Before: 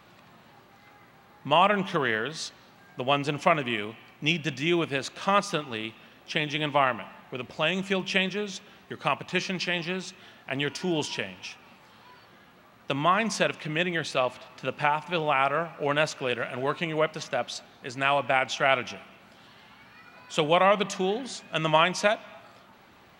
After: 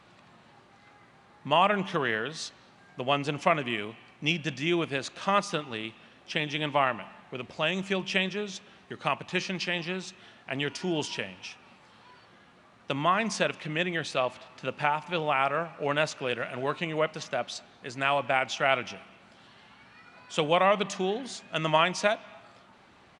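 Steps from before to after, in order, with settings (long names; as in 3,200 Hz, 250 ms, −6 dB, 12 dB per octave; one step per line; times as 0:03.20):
downsampling to 22,050 Hz
level −2 dB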